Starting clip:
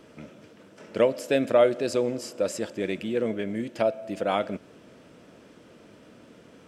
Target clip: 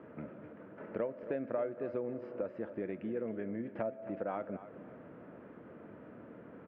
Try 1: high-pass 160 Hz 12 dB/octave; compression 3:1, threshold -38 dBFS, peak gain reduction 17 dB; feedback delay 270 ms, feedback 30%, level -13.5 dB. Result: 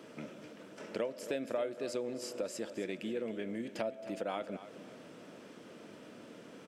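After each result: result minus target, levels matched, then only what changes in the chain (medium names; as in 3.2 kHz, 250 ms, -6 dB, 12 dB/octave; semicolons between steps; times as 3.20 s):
2 kHz band +4.0 dB; 125 Hz band -3.5 dB
add after compression: low-pass 1.8 kHz 24 dB/octave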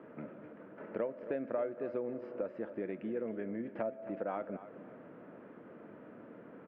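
125 Hz band -3.0 dB
change: high-pass 77 Hz 12 dB/octave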